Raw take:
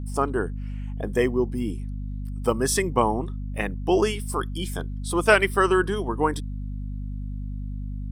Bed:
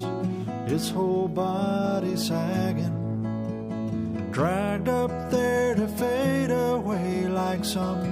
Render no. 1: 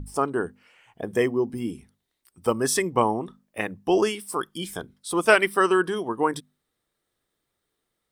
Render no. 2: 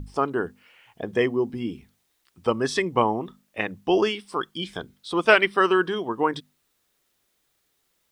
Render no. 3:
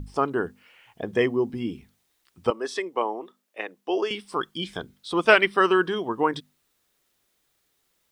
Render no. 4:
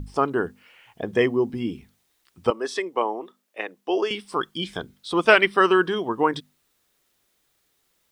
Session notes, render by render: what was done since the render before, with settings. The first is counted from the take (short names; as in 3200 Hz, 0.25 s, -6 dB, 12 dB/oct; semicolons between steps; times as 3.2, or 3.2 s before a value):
notches 50/100/150/200/250 Hz
synth low-pass 3800 Hz, resonance Q 1.5; requantised 12-bit, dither triangular
2.5–4.11 ladder high-pass 290 Hz, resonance 25%
gain +2 dB; limiter -2 dBFS, peak gain reduction 1.5 dB